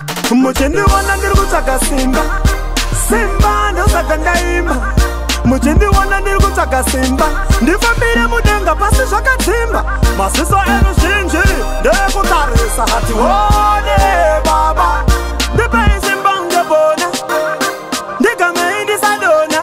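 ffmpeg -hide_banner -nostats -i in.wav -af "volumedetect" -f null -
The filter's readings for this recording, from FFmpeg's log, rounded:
mean_volume: -11.6 dB
max_volume: -1.7 dB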